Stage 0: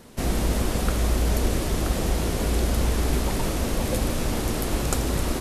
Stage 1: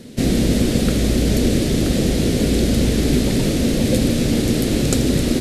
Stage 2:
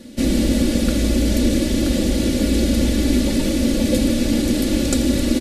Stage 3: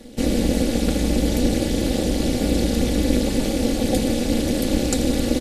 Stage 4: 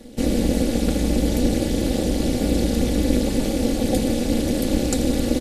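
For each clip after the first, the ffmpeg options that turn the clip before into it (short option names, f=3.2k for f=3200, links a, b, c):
-af "equalizer=f=125:t=o:w=1:g=9,equalizer=f=250:t=o:w=1:g=11,equalizer=f=500:t=o:w=1:g=7,equalizer=f=1k:t=o:w=1:g=-10,equalizer=f=2k:t=o:w=1:g=5,equalizer=f=4k:t=o:w=1:g=8,equalizer=f=8k:t=o:w=1:g=4"
-af "aecho=1:1:3.5:0.76,volume=-3dB"
-af "tremolo=f=240:d=0.919,volume=1.5dB"
-af "equalizer=f=3.1k:t=o:w=3:g=-2.5"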